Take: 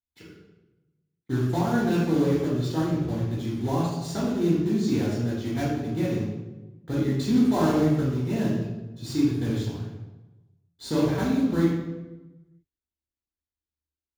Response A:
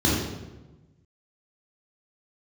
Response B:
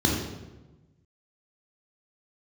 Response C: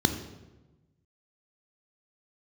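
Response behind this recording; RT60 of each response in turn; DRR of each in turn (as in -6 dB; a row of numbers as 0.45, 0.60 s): A; 1.1, 1.1, 1.1 s; -6.5, -2.0, 7.0 dB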